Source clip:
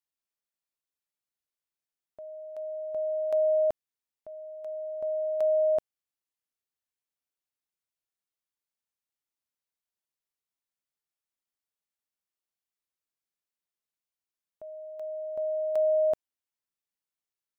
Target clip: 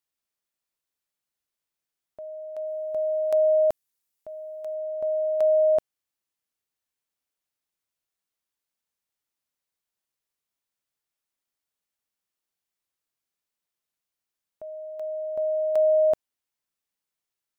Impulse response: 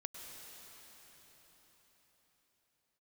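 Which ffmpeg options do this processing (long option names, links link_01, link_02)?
-filter_complex "[0:a]asettb=1/sr,asplit=3[link_01][link_02][link_03];[link_01]atrim=end=2.674[link_04];[link_02]atrim=start=2.67:end=4.75,asetpts=PTS-STARTPTS,afade=type=in:duration=0.004:curve=qsin,afade=type=out:start_time=2.076:duration=0.004:curve=qsin,aemphasis=mode=production:type=cd[link_05];[link_03]atrim=start=4.746[link_06];[link_04][link_05]acrossfade=duration=0.004:curve1=hsin:curve2=qsin[link_07];[link_07][link_06]acrossfade=duration=0.004:curve1=qsin:curve2=hsin,volume=4.5dB"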